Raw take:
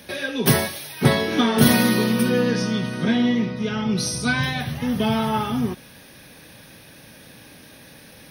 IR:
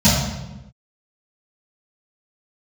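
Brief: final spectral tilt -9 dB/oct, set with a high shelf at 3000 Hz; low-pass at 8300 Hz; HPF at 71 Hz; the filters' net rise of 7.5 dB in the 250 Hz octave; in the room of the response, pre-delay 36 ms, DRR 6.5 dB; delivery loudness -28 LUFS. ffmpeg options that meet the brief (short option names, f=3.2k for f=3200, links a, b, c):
-filter_complex "[0:a]highpass=71,lowpass=8.3k,equalizer=f=250:t=o:g=8.5,highshelf=f=3k:g=-5,asplit=2[a][b];[1:a]atrim=start_sample=2205,adelay=36[c];[b][c]afir=irnorm=-1:irlink=0,volume=-28.5dB[d];[a][d]amix=inputs=2:normalize=0,volume=-21dB"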